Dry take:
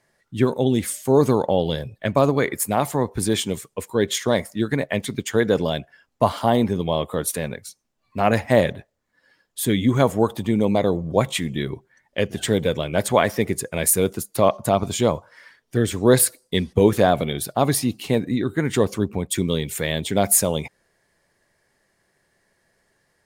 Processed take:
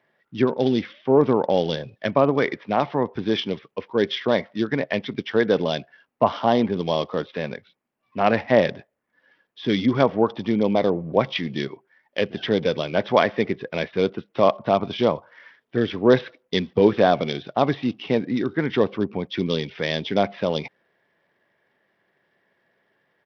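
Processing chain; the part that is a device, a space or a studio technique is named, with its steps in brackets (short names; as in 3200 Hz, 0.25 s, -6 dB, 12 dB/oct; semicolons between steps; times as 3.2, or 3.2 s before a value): 11.67–12.2 HPF 700 Hz -> 230 Hz 6 dB/oct; Bluetooth headset (HPF 170 Hz 12 dB/oct; downsampling 8000 Hz; SBC 64 kbps 44100 Hz)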